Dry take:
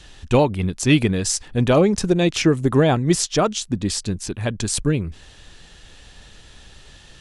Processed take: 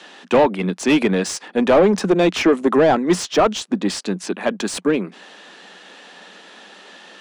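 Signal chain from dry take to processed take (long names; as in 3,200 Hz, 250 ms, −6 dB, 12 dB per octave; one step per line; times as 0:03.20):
Chebyshev high-pass filter 180 Hz, order 6
mid-hump overdrive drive 20 dB, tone 1,200 Hz, clips at −4 dBFS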